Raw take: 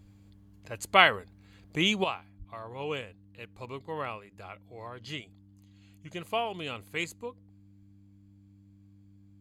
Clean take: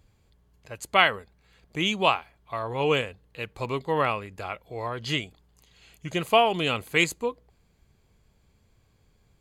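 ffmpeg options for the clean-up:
ffmpeg -i in.wav -filter_complex "[0:a]bandreject=frequency=99.3:width_type=h:width=4,bandreject=frequency=198.6:width_type=h:width=4,bandreject=frequency=297.9:width_type=h:width=4,asplit=3[link_01][link_02][link_03];[link_01]afade=type=out:start_time=2.38:duration=0.02[link_04];[link_02]highpass=frequency=140:width=0.5412,highpass=frequency=140:width=1.3066,afade=type=in:start_time=2.38:duration=0.02,afade=type=out:start_time=2.5:duration=0.02[link_05];[link_03]afade=type=in:start_time=2.5:duration=0.02[link_06];[link_04][link_05][link_06]amix=inputs=3:normalize=0,asetnsamples=nb_out_samples=441:pad=0,asendcmd='2.04 volume volume 11dB',volume=0dB" out.wav

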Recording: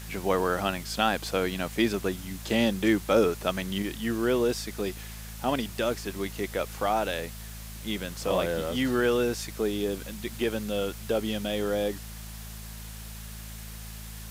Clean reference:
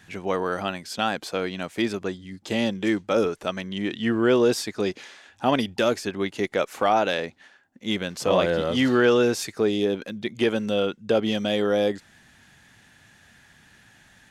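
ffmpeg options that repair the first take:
ffmpeg -i in.wav -af "bandreject=frequency=54.3:width_type=h:width=4,bandreject=frequency=108.6:width_type=h:width=4,bandreject=frequency=162.9:width_type=h:width=4,bandreject=frequency=217.2:width_type=h:width=4,afwtdn=0.0056,asetnsamples=nb_out_samples=441:pad=0,asendcmd='3.82 volume volume 6dB',volume=0dB" out.wav

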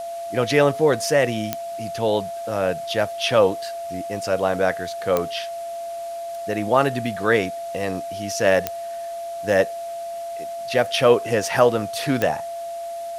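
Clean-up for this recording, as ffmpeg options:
ffmpeg -i in.wav -af "adeclick=threshold=4,bandreject=frequency=680:width=30,afwtdn=0.005" out.wav

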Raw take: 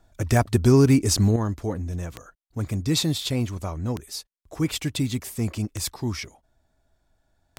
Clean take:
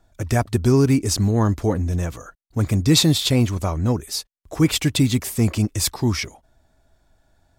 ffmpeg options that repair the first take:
ffmpeg -i in.wav -af "adeclick=threshold=4,asetnsamples=nb_out_samples=441:pad=0,asendcmd='1.36 volume volume 7.5dB',volume=0dB" out.wav

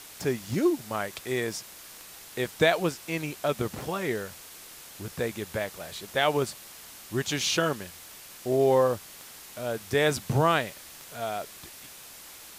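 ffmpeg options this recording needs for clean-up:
ffmpeg -i in.wav -af "adeclick=threshold=4,afwtdn=0.0056" out.wav

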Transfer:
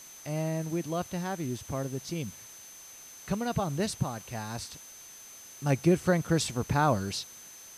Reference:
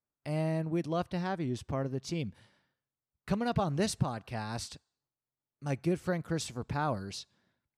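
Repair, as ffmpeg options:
ffmpeg -i in.wav -af "bandreject=frequency=6200:width=30,afwtdn=0.0028,asetnsamples=nb_out_samples=441:pad=0,asendcmd='5.37 volume volume -7dB',volume=0dB" out.wav

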